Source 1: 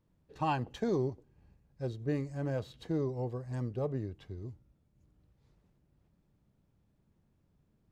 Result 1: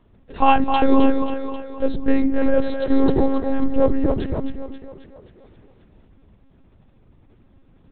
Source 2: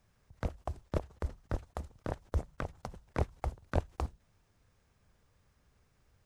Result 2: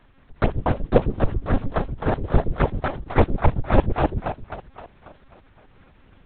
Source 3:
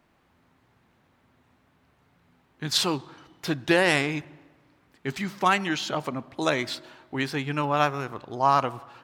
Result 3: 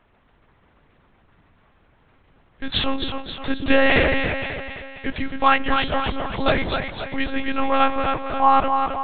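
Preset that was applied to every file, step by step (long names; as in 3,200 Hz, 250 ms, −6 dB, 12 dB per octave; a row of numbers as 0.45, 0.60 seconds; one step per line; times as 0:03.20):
echo with a time of its own for lows and highs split 390 Hz, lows 127 ms, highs 266 ms, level −5.5 dB
one-pitch LPC vocoder at 8 kHz 270 Hz
normalise the peak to −2 dBFS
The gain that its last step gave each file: +18.0, +15.5, +5.5 decibels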